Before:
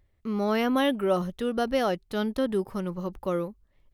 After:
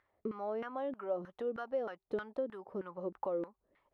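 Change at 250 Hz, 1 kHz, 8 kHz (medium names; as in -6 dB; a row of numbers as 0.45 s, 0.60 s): -16.5 dB, -11.5 dB, under -30 dB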